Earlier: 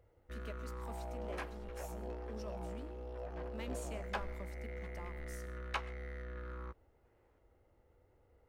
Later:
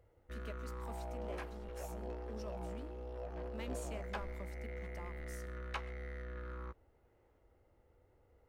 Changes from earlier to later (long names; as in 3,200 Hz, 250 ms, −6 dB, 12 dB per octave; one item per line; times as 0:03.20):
speech: send −6.5 dB
second sound −4.0 dB